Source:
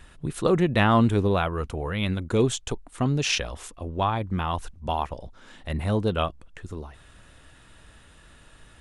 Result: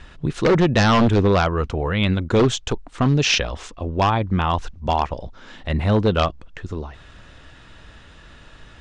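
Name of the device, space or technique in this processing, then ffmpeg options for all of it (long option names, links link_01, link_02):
synthesiser wavefolder: -af "aeval=exprs='0.15*(abs(mod(val(0)/0.15+3,4)-2)-1)':channel_layout=same,lowpass=frequency=6300:width=0.5412,lowpass=frequency=6300:width=1.3066,volume=7dB"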